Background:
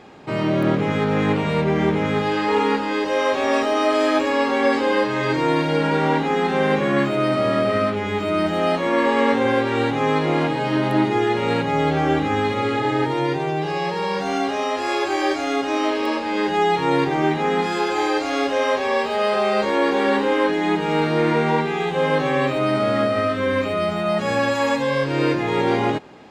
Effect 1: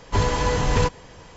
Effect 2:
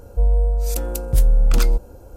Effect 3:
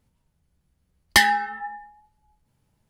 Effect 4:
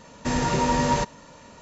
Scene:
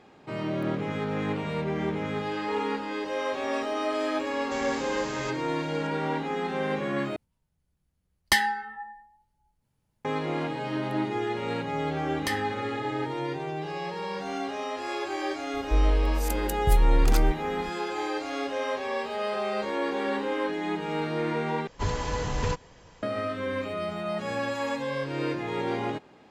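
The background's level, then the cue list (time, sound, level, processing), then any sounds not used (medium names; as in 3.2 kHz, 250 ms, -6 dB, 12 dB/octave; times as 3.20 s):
background -10 dB
4.26 s: add 4 -18 dB + spectrum-flattening compressor 2:1
7.16 s: replace with 3 -6 dB
11.11 s: add 3 -7.5 dB + compression 1.5:1, threshold -32 dBFS
15.54 s: add 2 -6 dB
21.67 s: replace with 1 -8 dB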